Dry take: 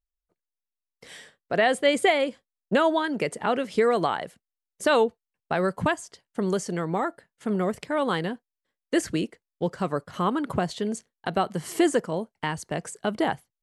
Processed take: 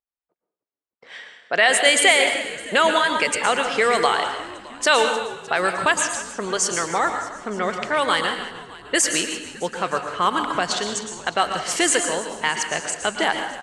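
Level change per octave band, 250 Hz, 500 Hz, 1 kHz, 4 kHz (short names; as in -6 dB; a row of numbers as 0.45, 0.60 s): -3.0, +1.5, +6.5, +12.0 dB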